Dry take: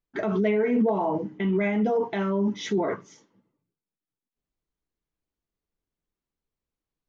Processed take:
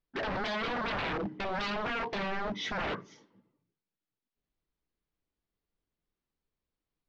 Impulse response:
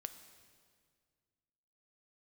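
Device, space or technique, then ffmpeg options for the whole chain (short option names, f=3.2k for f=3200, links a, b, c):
synthesiser wavefolder: -af "aeval=exprs='0.0376*(abs(mod(val(0)/0.0376+3,4)-2)-1)':c=same,lowpass=f=4.9k:w=0.5412,lowpass=f=4.9k:w=1.3066"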